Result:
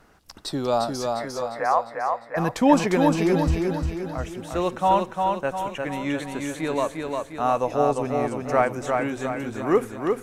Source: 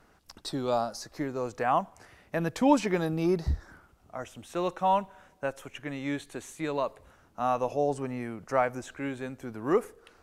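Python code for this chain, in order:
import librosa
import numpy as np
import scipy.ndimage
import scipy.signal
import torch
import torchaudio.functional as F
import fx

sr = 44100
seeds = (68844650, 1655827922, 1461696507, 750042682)

y = fx.ellip_bandpass(x, sr, low_hz=500.0, high_hz=2100.0, order=3, stop_db=40, at=(1.11, 2.36), fade=0.02)
y = fx.echo_feedback(y, sr, ms=352, feedback_pct=50, wet_db=-4)
y = y * 10.0 ** (5.0 / 20.0)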